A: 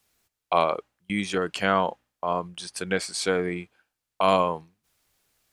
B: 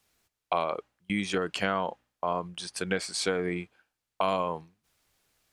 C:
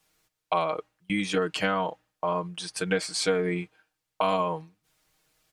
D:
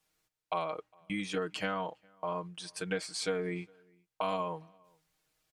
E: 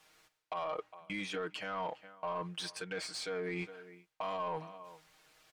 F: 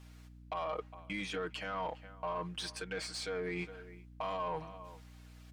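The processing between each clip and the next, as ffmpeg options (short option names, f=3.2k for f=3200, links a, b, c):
-af "highshelf=f=8.7k:g=-5,acompressor=threshold=-24dB:ratio=4"
-af "aecho=1:1:6.4:0.81"
-filter_complex "[0:a]asplit=2[a][b];[b]adelay=408.2,volume=-29dB,highshelf=f=4k:g=-9.18[c];[a][c]amix=inputs=2:normalize=0,volume=-8dB"
-filter_complex "[0:a]areverse,acompressor=threshold=-41dB:ratio=6,areverse,alimiter=level_in=15dB:limit=-24dB:level=0:latency=1:release=421,volume=-15dB,asplit=2[a][b];[b]highpass=f=720:p=1,volume=11dB,asoftclip=type=tanh:threshold=-39dB[c];[a][c]amix=inputs=2:normalize=0,lowpass=f=3.1k:p=1,volume=-6dB,volume=10.5dB"
-af "aeval=exprs='val(0)+0.00224*(sin(2*PI*60*n/s)+sin(2*PI*2*60*n/s)/2+sin(2*PI*3*60*n/s)/3+sin(2*PI*4*60*n/s)/4+sin(2*PI*5*60*n/s)/5)':c=same"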